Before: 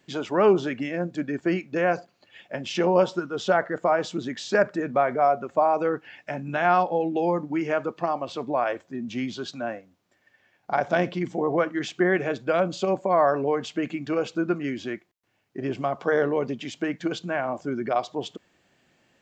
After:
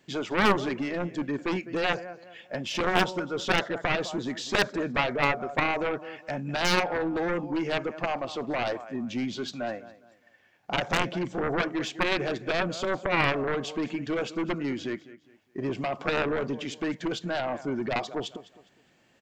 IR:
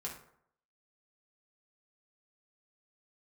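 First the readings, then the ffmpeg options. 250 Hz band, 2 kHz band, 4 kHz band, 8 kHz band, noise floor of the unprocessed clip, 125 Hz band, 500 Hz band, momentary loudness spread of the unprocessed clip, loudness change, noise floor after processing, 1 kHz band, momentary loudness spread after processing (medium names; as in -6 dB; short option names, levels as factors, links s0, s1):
-2.5 dB, +1.5 dB, +5.5 dB, no reading, -68 dBFS, -1.0 dB, -6.0 dB, 12 LU, -3.0 dB, -64 dBFS, -4.5 dB, 10 LU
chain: -af "aecho=1:1:205|410|615:0.119|0.038|0.0122,aeval=exprs='0.422*(cos(1*acos(clip(val(0)/0.422,-1,1)))-cos(1*PI/2))+0.0335*(cos(2*acos(clip(val(0)/0.422,-1,1)))-cos(2*PI/2))+0.168*(cos(3*acos(clip(val(0)/0.422,-1,1)))-cos(3*PI/2))+0.00335*(cos(6*acos(clip(val(0)/0.422,-1,1)))-cos(6*PI/2))+0.0299*(cos(7*acos(clip(val(0)/0.422,-1,1)))-cos(7*PI/2))':c=same,aeval=exprs='0.237*(abs(mod(val(0)/0.237+3,4)-2)-1)':c=same,volume=1.5"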